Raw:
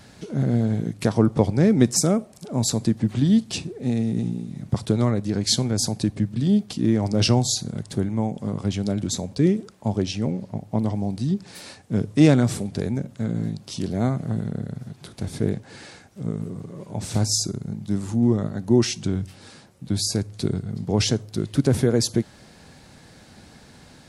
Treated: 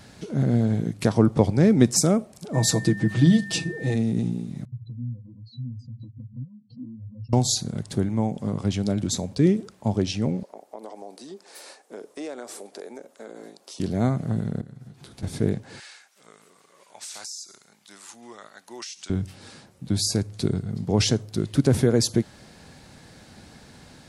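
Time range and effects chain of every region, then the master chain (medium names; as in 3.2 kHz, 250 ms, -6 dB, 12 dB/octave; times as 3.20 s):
2.53–3.94 s: hum notches 50/100/150/200/250 Hz + comb 6.2 ms, depth 87% + whistle 1.8 kHz -36 dBFS
4.65–7.33 s: spectral contrast enhancement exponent 3.7 + compression 5:1, threshold -28 dBFS + pitch-class resonator B, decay 0.1 s
10.43–13.80 s: high-pass 400 Hz 24 dB/octave + compression 3:1, threshold -34 dBFS + peaking EQ 3 kHz -6 dB 2 oct
14.61–15.23 s: band-stop 600 Hz, Q 11 + compression 2.5:1, threshold -44 dBFS + doubling 15 ms -9 dB
15.80–19.10 s: high-pass 1.3 kHz + dynamic bell 6.3 kHz, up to +5 dB, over -42 dBFS, Q 0.88 + compression 16:1, threshold -33 dBFS
whole clip: none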